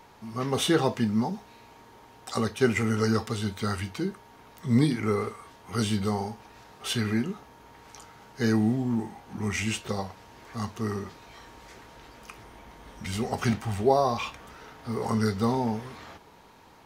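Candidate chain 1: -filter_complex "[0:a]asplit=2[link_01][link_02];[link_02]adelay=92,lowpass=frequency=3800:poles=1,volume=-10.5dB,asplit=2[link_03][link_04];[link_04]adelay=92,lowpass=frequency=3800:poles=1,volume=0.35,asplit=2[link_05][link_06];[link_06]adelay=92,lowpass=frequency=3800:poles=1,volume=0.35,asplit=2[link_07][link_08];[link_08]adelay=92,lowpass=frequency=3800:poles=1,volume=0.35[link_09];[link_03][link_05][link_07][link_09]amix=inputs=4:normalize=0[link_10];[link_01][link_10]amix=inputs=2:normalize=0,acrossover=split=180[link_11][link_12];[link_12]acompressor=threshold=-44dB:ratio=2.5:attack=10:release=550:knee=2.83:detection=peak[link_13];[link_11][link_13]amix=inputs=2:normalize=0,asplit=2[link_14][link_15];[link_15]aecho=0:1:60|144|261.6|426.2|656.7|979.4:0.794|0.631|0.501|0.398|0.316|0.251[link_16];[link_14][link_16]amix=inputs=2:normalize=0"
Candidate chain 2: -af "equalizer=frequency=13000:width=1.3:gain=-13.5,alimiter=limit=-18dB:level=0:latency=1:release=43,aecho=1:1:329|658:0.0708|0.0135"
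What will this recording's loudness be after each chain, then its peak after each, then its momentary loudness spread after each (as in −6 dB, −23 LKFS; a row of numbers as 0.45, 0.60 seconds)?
−31.0, −30.5 LKFS; −12.5, −17.5 dBFS; 15, 21 LU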